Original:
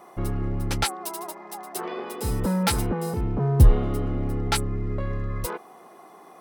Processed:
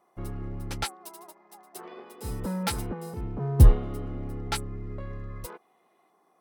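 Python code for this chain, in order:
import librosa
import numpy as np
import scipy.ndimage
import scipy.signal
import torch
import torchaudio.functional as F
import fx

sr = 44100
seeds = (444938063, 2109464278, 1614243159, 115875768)

y = fx.spec_box(x, sr, start_s=5.61, length_s=0.49, low_hz=1800.0, high_hz=4200.0, gain_db=6)
y = fx.upward_expand(y, sr, threshold_db=-46.0, expansion=1.5)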